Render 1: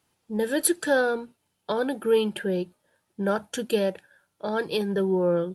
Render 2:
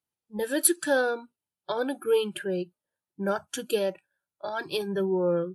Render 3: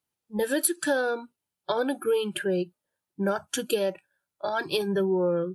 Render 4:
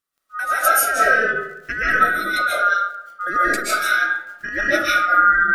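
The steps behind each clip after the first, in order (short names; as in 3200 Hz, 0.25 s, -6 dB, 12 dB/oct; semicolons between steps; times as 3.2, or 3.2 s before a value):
spectral noise reduction 19 dB; high shelf 8100 Hz +6.5 dB; gain -2 dB
compressor 5:1, threshold -26 dBFS, peak gain reduction 10 dB; gain +4.5 dB
band-swap scrambler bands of 1000 Hz; crackle 12/s -39 dBFS; reverb RT60 0.85 s, pre-delay 0.1 s, DRR -9.5 dB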